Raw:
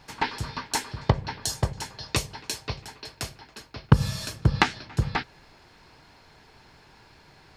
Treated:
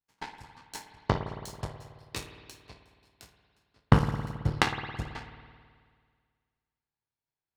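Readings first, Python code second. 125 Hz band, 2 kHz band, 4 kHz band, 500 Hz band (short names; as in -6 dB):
-5.0 dB, -5.0 dB, -8.0 dB, -2.5 dB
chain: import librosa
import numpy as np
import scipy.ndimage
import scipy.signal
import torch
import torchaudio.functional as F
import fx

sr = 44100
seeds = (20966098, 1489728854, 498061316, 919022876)

y = fx.spec_trails(x, sr, decay_s=0.45)
y = fx.power_curve(y, sr, exponent=2.0)
y = fx.rev_spring(y, sr, rt60_s=1.9, pass_ms=(54,), chirp_ms=30, drr_db=6.5)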